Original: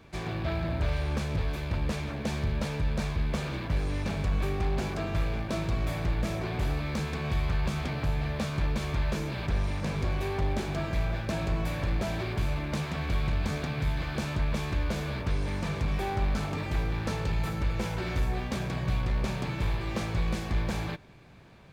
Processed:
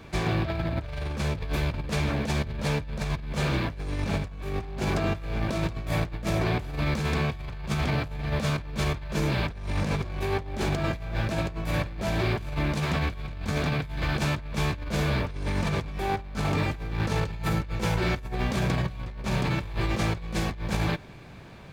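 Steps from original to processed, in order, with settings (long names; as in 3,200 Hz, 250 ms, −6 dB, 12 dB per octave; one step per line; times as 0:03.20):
compressor whose output falls as the input rises −32 dBFS, ratio −0.5
level +4.5 dB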